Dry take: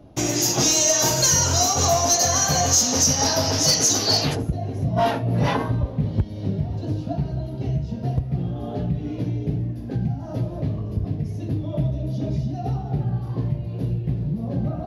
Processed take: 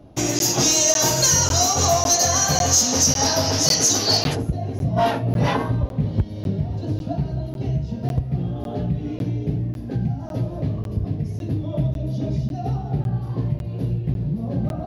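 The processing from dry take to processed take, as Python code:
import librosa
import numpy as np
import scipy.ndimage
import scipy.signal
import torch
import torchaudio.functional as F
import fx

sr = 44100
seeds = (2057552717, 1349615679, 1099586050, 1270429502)

y = fx.buffer_crackle(x, sr, first_s=0.39, period_s=0.55, block=512, kind='zero')
y = y * librosa.db_to_amplitude(1.0)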